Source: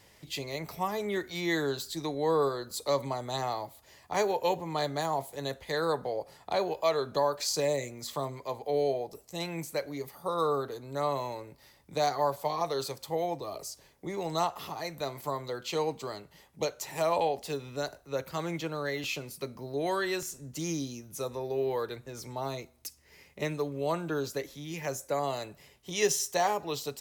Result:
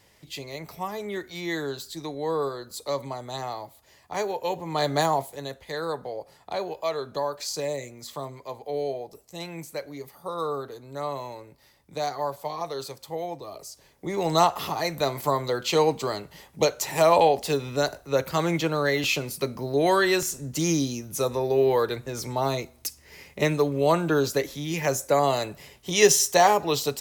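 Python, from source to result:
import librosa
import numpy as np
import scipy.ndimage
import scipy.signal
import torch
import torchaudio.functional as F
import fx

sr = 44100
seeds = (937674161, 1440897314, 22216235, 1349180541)

y = fx.gain(x, sr, db=fx.line((4.48, -0.5), (5.01, 9.5), (5.49, -1.0), (13.68, -1.0), (14.3, 9.5)))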